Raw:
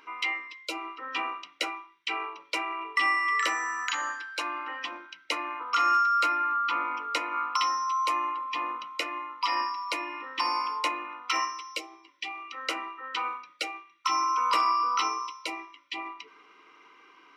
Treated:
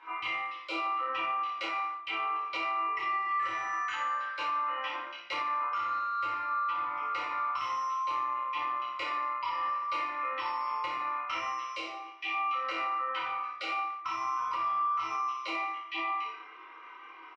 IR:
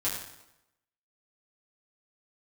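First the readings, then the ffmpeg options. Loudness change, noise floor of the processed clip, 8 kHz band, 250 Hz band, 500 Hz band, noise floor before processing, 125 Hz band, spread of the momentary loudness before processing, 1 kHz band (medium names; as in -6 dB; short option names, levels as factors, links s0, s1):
-3.0 dB, -49 dBFS, under -10 dB, -5.5 dB, -2.5 dB, -58 dBFS, no reading, 13 LU, -2.0 dB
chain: -filter_complex "[0:a]highpass=f=900:p=1,highshelf=f=4300:g=-5.5,asplit=2[s0][s1];[s1]highpass=f=720:p=1,volume=2.51,asoftclip=type=tanh:threshold=0.158[s2];[s0][s2]amix=inputs=2:normalize=0,lowpass=f=1400:p=1,volume=0.501,acompressor=threshold=0.0112:ratio=2.5,aemphasis=mode=reproduction:type=50fm,aecho=1:1:27|56:0.631|0.447[s3];[1:a]atrim=start_sample=2205,afade=t=out:st=0.42:d=0.01,atrim=end_sample=18963,asetrate=48510,aresample=44100[s4];[s3][s4]afir=irnorm=-1:irlink=0,alimiter=level_in=1.19:limit=0.0631:level=0:latency=1:release=229,volume=0.841,volume=1.19"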